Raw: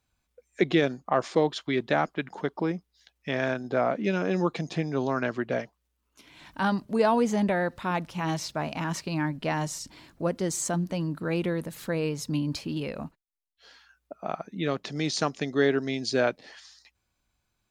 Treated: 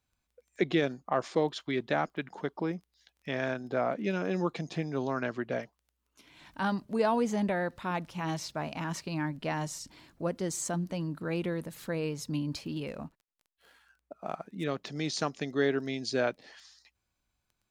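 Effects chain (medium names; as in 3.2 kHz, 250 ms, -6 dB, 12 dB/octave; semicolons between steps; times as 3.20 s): 12.87–14.64 s: median filter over 9 samples; crackle 10 per s -45 dBFS; trim -4.5 dB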